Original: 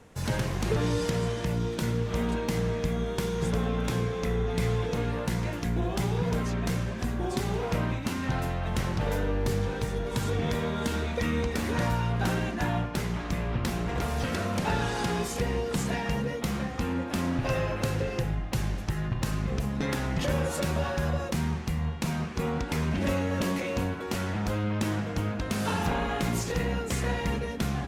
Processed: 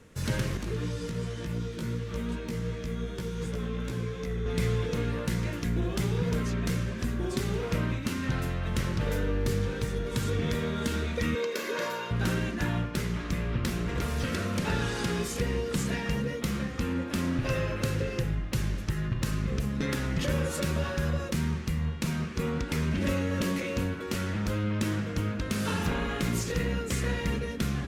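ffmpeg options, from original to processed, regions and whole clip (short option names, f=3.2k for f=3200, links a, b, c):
-filter_complex "[0:a]asettb=1/sr,asplit=3[a][b][c];[a]atrim=end=0.574[d];[b]atrim=start=0.57:end=4.46,asetpts=PTS-STARTPTS,afade=t=in:d=0.004:c=qsin,afade=t=out:st=3.886:d=0.004:c=qsin,acrossover=split=310|1500[e][f][g];[e]acompressor=threshold=-29dB:ratio=4[h];[f]acompressor=threshold=-34dB:ratio=4[i];[g]acompressor=threshold=-42dB:ratio=4[j];[h][i][j]amix=inputs=3:normalize=0,flanger=delay=15.5:depth=2.5:speed=2.7[k];[c]atrim=start=4.456[l];[d][k]acrossfade=d=0.004:c1=hsin:c2=qsin[m];[m][l]acrossfade=d=0.004:c1=qsin:c2=hsin,asettb=1/sr,asplit=3[n][o][p];[n]atrim=end=11.354[q];[o]atrim=start=11.35:end=12.11,asetpts=PTS-STARTPTS,afade=t=in:d=0.004:c=qsin,afade=t=out:st=0.756:d=0.004:c=qsin,highpass=f=260:w=0.5412,highpass=f=260:w=1.3066,equalizer=f=8.8k:w=4.8:g=-12.5,aecho=1:1:1.9:0.67,atrim=end_sample=33516[r];[p]atrim=start=12.106[s];[q][r]acrossfade=d=0.004:c1=hsin:c2=qsin[t];[t][s]acrossfade=d=0.004:c1=qsin:c2=hsin,equalizer=f=760:t=o:w=0.43:g=-12,bandreject=f=1k:w=16"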